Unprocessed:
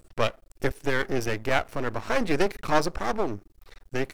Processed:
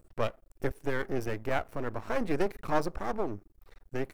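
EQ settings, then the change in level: bell 4600 Hz -8.5 dB 2.6 oct; -4.5 dB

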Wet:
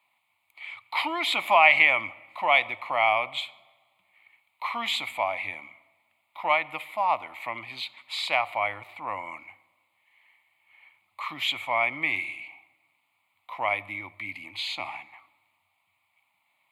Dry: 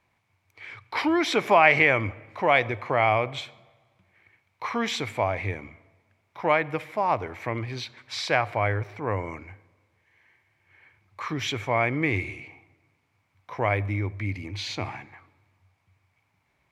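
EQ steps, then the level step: HPF 390 Hz 12 dB/oct; high shelf 2200 Hz +8 dB; fixed phaser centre 1600 Hz, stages 6; 0.0 dB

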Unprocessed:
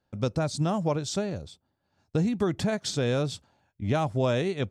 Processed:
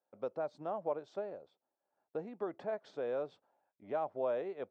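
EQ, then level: ladder band-pass 710 Hz, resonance 25%; +3.0 dB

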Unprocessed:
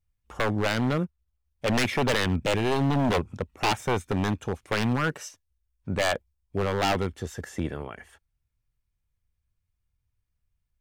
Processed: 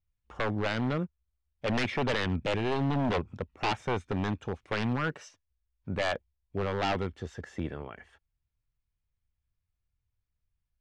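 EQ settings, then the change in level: LPF 4500 Hz 12 dB/oct; -4.5 dB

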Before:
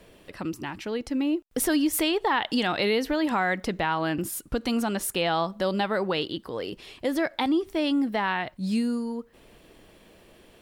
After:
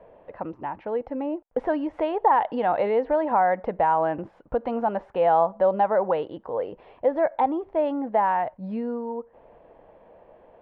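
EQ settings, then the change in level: ladder low-pass 2200 Hz, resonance 20%; band shelf 680 Hz +12.5 dB 1.3 oct; 0.0 dB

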